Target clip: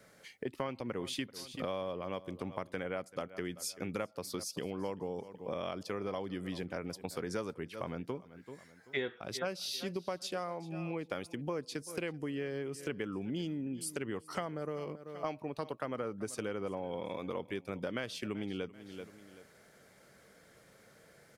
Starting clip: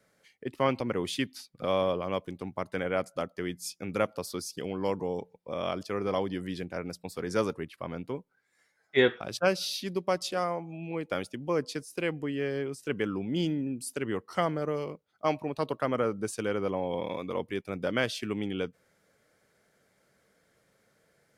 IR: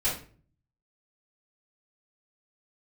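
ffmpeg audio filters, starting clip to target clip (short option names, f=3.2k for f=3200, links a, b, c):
-filter_complex "[0:a]asplit=2[a][b];[b]aecho=0:1:385|770:0.0891|0.0258[c];[a][c]amix=inputs=2:normalize=0,acompressor=threshold=-44dB:ratio=5,volume=7.5dB"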